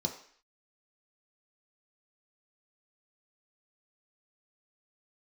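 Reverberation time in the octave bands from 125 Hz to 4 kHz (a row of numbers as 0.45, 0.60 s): 0.35, 0.50, 0.50, 0.55, 0.65, 0.60 s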